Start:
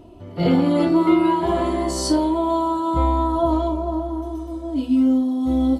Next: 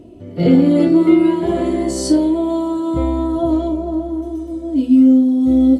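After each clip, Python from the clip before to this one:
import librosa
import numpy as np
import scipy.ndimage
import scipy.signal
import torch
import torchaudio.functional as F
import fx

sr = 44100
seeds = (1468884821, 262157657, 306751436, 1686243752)

y = fx.graphic_eq_10(x, sr, hz=(125, 250, 500, 1000, 2000, 8000), db=(6, 8, 8, -8, 5, 6))
y = F.gain(torch.from_numpy(y), -3.0).numpy()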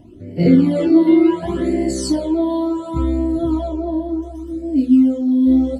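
y = fx.phaser_stages(x, sr, stages=12, low_hz=130.0, high_hz=1200.0, hz=0.69, feedback_pct=5)
y = F.gain(torch.from_numpy(y), 1.0).numpy()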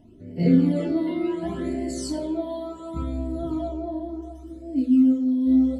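y = fx.room_shoebox(x, sr, seeds[0], volume_m3=2200.0, walls='furnished', distance_m=1.5)
y = F.gain(torch.from_numpy(y), -8.5).numpy()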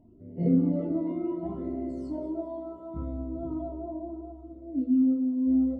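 y = scipy.signal.savgol_filter(x, 65, 4, mode='constant')
y = fx.echo_feedback(y, sr, ms=203, feedback_pct=44, wet_db=-15.0)
y = F.gain(torch.from_numpy(y), -5.5).numpy()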